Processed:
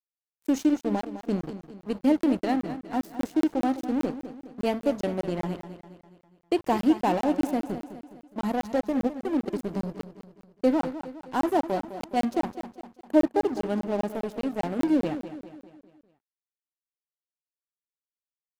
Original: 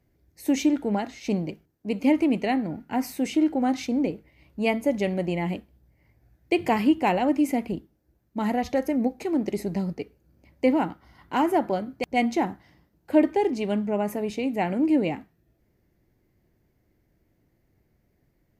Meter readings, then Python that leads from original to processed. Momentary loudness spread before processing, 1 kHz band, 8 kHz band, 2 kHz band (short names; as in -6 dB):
10 LU, -2.0 dB, n/a, -6.5 dB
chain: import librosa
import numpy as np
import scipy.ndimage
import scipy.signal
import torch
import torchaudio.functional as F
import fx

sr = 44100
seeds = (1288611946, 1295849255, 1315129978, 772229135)

y = fx.peak_eq(x, sr, hz=2300.0, db=-14.0, octaves=0.48)
y = np.sign(y) * np.maximum(np.abs(y) - 10.0 ** (-35.0 / 20.0), 0.0)
y = fx.echo_feedback(y, sr, ms=207, feedback_pct=49, wet_db=-12.0)
y = fx.buffer_crackle(y, sr, first_s=0.81, period_s=0.2, block=1024, kind='zero')